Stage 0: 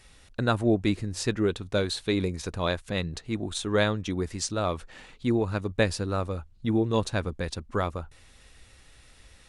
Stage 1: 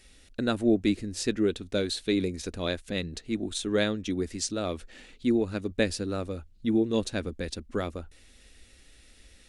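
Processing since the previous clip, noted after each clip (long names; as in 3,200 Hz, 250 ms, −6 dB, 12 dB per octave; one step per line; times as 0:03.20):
octave-band graphic EQ 125/250/1,000 Hz −11/+5/−11 dB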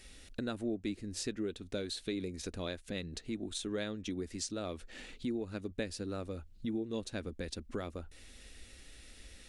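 downward compressor 2.5 to 1, threshold −42 dBFS, peak gain reduction 15.5 dB
level +1.5 dB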